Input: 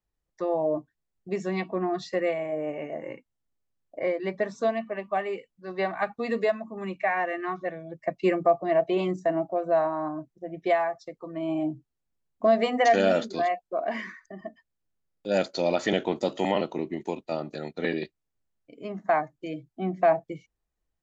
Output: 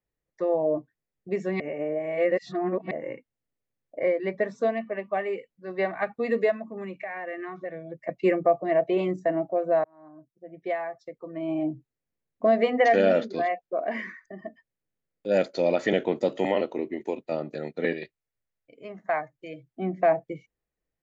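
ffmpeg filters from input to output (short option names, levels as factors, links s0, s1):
-filter_complex "[0:a]asettb=1/sr,asplit=3[s0][s1][s2];[s0]atrim=end=6.694[s3];[s1]atrim=start=6.69:end=8.09,asetpts=PTS-STARTPTS,afade=t=in:d=0.004:c=qsin,afade=t=out:st=1.396:d=0.004:c=qsin,acompressor=threshold=0.0251:ratio=5:attack=3.2:release=140:knee=1:detection=peak[s4];[s2]atrim=start=8.086[s5];[s3][s4]acrossfade=d=0.004:c1=hsin:c2=qsin[s6];[s6][s5]acrossfade=d=0.004:c1=qsin:c2=hsin,asettb=1/sr,asplit=3[s7][s8][s9];[s7]atrim=end=12.634[s10];[s8]atrim=start=12.63:end=13.87,asetpts=PTS-STARTPTS,afade=t=in:d=0.004:c=qsin,afade=t=out:st=1.236:d=0.004:c=qsin,lowpass=f=6200:w=0.5412,lowpass=f=6200:w=1.3066[s11];[s9]atrim=start=13.866[s12];[s10][s11]acrossfade=d=0.004:c1=hsin:c2=qsin[s13];[s13][s12]acrossfade=d=0.004:c1=qsin:c2=hsin,asettb=1/sr,asplit=3[s14][s15][s16];[s14]atrim=end=16.464[s17];[s15]atrim=start=16.46:end=17.18,asetpts=PTS-STARTPTS,afade=t=in:d=0.004:c=qsin,afade=t=out:st=0.716:d=0.004:c=qsin,equalizer=f=160:t=o:w=0.43:g=-12[s18];[s16]atrim=start=17.176[s19];[s17][s18]acrossfade=d=0.004:c1=hsin:c2=qsin[s20];[s20][s19]acrossfade=d=0.004:c1=qsin:c2=hsin,asettb=1/sr,asplit=3[s21][s22][s23];[s21]atrim=end=17.934[s24];[s22]atrim=start=17.93:end=19.69,asetpts=PTS-STARTPTS,afade=t=in:d=0.004:c=qsin,afade=t=out:st=1.756:d=0.004:c=qsin,equalizer=f=260:w=0.7:g=-9.5[s25];[s23]atrim=start=19.686[s26];[s24][s25]acrossfade=d=0.004:c1=hsin:c2=qsin[s27];[s27][s26]acrossfade=d=0.004:c1=qsin:c2=hsin,asplit=4[s28][s29][s30][s31];[s28]atrim=end=1.602[s32];[s29]atrim=start=1.598:end=2.912,asetpts=PTS-STARTPTS,areverse[s33];[s30]atrim=start=2.908:end=9.84,asetpts=PTS-STARTPTS,afade=t=out:st=6.928:d=0.004:c=hsin[s34];[s31]atrim=start=9.84,asetpts=PTS-STARTPTS,afade=t=in:d=1.79[s35];[s32][s33]acrossfade=d=0.004:c1=hsin:c2=hsin[s36];[s34][s35]concat=n=2:v=0:a=1[s37];[s36][s37]acrossfade=d=0.004:c1=hsin:c2=hsin,equalizer=f=125:t=o:w=1:g=7,equalizer=f=250:t=o:w=1:g=5,equalizer=f=500:t=o:w=1:g=10,equalizer=f=2000:t=o:w=1:g=9,volume=0.422"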